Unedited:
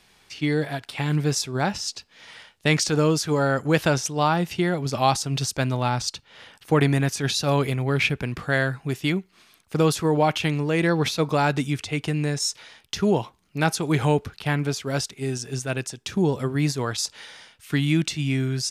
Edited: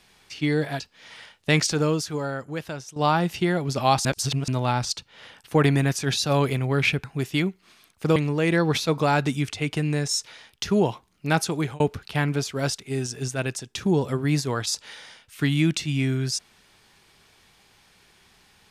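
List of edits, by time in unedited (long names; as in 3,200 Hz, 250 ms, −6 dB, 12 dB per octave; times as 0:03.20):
0:00.80–0:01.97: remove
0:02.81–0:04.13: fade out quadratic, to −14 dB
0:05.22–0:05.65: reverse
0:08.21–0:08.74: remove
0:09.86–0:10.47: remove
0:13.82–0:14.11: fade out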